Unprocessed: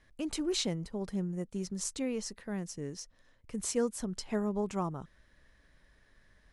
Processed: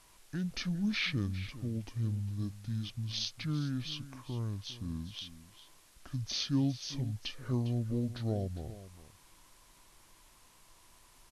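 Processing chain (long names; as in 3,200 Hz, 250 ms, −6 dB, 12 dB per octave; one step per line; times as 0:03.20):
dynamic equaliser 1,600 Hz, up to −6 dB, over −53 dBFS, Q 0.93
background noise white −64 dBFS
single-tap delay 233 ms −15 dB
wrong playback speed 78 rpm record played at 45 rpm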